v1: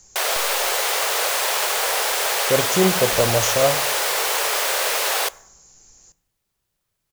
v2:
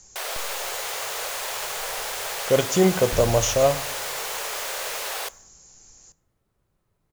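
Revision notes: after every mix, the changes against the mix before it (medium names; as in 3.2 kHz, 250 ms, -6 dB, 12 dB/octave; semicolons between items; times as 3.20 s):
first sound -9.0 dB; second sound +10.0 dB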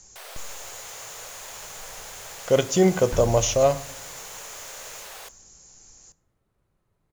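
first sound -11.0 dB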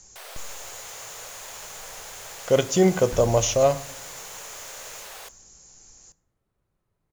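second sound -4.0 dB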